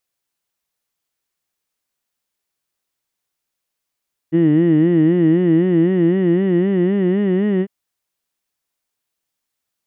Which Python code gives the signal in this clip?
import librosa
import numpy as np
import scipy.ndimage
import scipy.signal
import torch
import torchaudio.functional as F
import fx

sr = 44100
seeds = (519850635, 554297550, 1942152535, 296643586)

y = fx.formant_vowel(sr, seeds[0], length_s=3.35, hz=158.0, glide_st=4.0, vibrato_hz=3.9, vibrato_st=1.25, f1_hz=320.0, f2_hz=1900.0, f3_hz=2900.0)